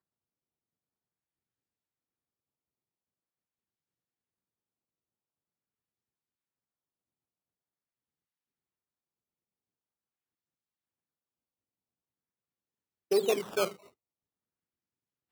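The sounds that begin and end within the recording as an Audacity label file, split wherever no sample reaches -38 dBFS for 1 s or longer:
13.110000	13.720000	sound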